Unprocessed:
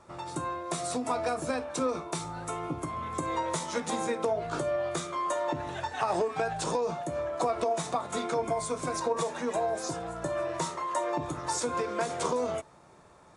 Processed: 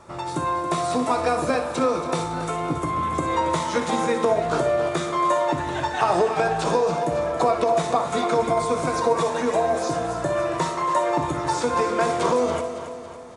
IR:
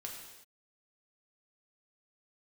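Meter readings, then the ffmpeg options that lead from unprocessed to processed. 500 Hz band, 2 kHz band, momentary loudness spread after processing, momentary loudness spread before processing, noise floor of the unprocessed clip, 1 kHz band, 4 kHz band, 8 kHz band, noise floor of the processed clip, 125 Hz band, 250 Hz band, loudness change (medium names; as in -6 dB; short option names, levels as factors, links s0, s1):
+9.0 dB, +9.0 dB, 5 LU, 5 LU, -56 dBFS, +9.5 dB, +7.0 dB, +2.0 dB, -33 dBFS, +9.0 dB, +9.0 dB, +8.5 dB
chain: -filter_complex "[0:a]acrossover=split=4400[s0][s1];[s1]acompressor=threshold=0.00501:ratio=4:attack=1:release=60[s2];[s0][s2]amix=inputs=2:normalize=0,aecho=1:1:278|556|834|1112|1390|1668:0.282|0.147|0.0762|0.0396|0.0206|0.0107,asplit=2[s3][s4];[1:a]atrim=start_sample=2205,adelay=60[s5];[s4][s5]afir=irnorm=-1:irlink=0,volume=0.447[s6];[s3][s6]amix=inputs=2:normalize=0,volume=2.51"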